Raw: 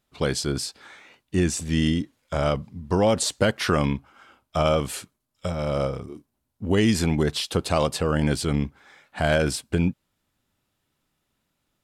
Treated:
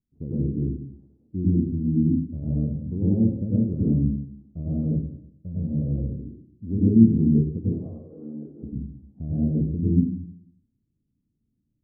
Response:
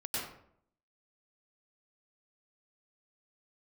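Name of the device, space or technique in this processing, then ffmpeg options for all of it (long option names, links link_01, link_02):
next room: -filter_complex "[0:a]asplit=3[link_01][link_02][link_03];[link_01]afade=type=out:start_time=7.63:duration=0.02[link_04];[link_02]highpass=660,afade=type=in:start_time=7.63:duration=0.02,afade=type=out:start_time=8.62:duration=0.02[link_05];[link_03]afade=type=in:start_time=8.62:duration=0.02[link_06];[link_04][link_05][link_06]amix=inputs=3:normalize=0,lowpass=frequency=290:width=0.5412,lowpass=frequency=290:width=1.3066[link_07];[1:a]atrim=start_sample=2205[link_08];[link_07][link_08]afir=irnorm=-1:irlink=0"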